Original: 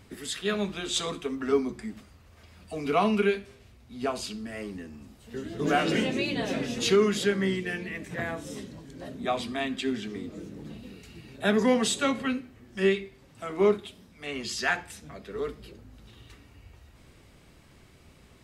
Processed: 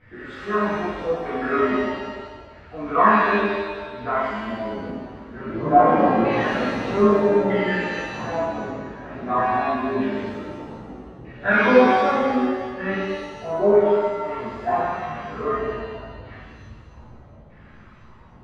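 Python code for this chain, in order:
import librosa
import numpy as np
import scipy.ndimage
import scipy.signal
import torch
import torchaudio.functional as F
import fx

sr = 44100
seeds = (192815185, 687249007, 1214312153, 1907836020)

y = fx.chorus_voices(x, sr, voices=4, hz=0.7, base_ms=18, depth_ms=1.9, mix_pct=55)
y = fx.filter_lfo_lowpass(y, sr, shape='saw_down', hz=0.8, low_hz=540.0, high_hz=1900.0, q=3.7)
y = fx.rev_shimmer(y, sr, seeds[0], rt60_s=1.4, semitones=7, shimmer_db=-8, drr_db=-9.5)
y = y * librosa.db_to_amplitude(-2.0)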